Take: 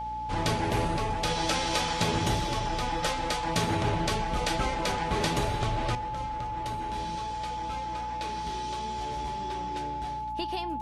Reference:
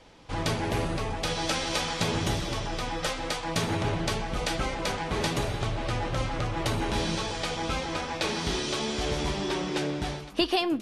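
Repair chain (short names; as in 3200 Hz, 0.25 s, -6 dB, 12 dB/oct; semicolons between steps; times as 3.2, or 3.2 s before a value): de-hum 59.3 Hz, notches 5; notch 860 Hz, Q 30; gain correction +10.5 dB, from 5.95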